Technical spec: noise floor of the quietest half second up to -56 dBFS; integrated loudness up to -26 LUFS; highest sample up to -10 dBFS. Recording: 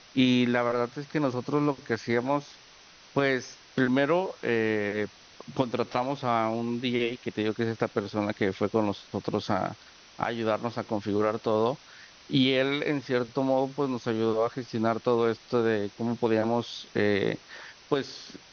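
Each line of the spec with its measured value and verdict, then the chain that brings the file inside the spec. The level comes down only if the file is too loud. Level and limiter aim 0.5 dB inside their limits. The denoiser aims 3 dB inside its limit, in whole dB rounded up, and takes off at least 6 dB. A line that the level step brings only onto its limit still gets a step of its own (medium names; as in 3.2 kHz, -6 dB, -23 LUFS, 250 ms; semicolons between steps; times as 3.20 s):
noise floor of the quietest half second -53 dBFS: fail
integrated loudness -28.0 LUFS: pass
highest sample -9.0 dBFS: fail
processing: noise reduction 6 dB, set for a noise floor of -53 dBFS; peak limiter -10.5 dBFS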